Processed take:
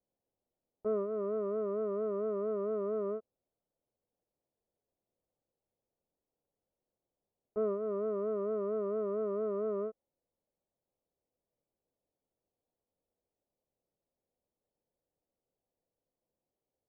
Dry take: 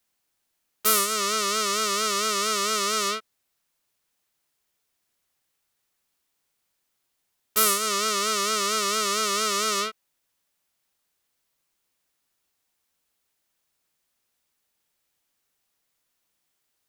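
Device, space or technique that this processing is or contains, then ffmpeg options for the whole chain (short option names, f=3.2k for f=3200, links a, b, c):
under water: -af "lowpass=f=730:w=0.5412,lowpass=f=730:w=1.3066,equalizer=f=510:t=o:w=0.51:g=6,volume=-3dB"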